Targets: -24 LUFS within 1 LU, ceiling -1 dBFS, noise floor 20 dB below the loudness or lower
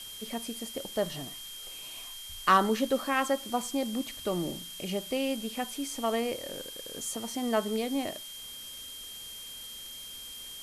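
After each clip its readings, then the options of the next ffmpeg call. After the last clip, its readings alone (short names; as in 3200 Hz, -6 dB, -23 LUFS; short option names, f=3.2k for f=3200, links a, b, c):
steady tone 3200 Hz; tone level -43 dBFS; noise floor -44 dBFS; noise floor target -53 dBFS; loudness -32.5 LUFS; peak -12.5 dBFS; loudness target -24.0 LUFS
-> -af "bandreject=f=3.2k:w=30"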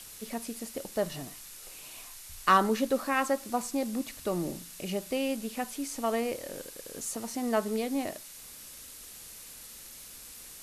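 steady tone none; noise floor -48 dBFS; noise floor target -52 dBFS
-> -af "afftdn=nr=6:nf=-48"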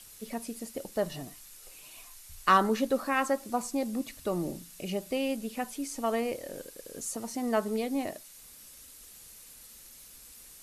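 noise floor -52 dBFS; loudness -31.5 LUFS; peak -12.5 dBFS; loudness target -24.0 LUFS
-> -af "volume=7.5dB"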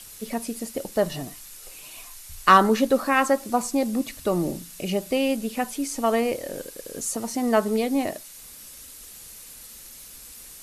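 loudness -24.0 LUFS; peak -5.0 dBFS; noise floor -44 dBFS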